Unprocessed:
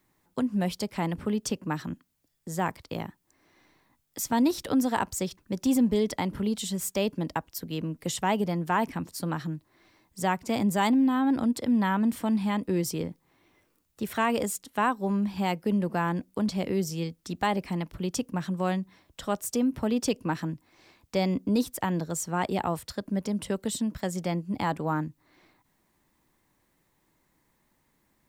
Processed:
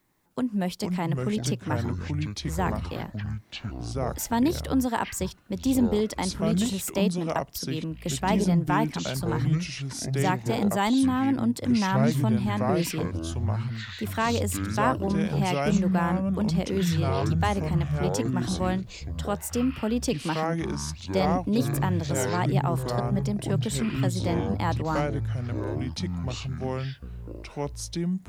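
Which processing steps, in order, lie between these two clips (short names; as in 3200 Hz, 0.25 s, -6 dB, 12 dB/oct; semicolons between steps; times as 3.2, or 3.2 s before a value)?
echoes that change speed 0.307 s, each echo -6 st, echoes 3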